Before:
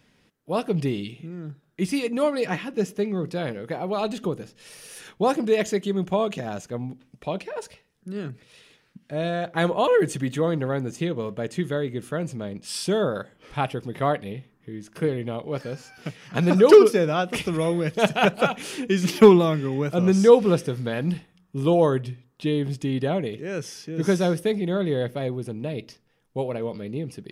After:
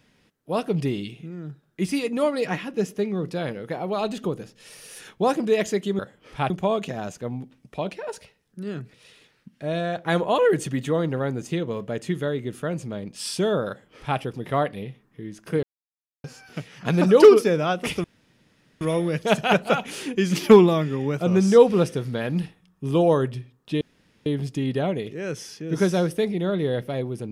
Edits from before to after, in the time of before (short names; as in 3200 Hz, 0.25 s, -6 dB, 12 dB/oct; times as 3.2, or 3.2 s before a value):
13.17–13.68 copy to 5.99
15.12–15.73 mute
17.53 insert room tone 0.77 s
22.53 insert room tone 0.45 s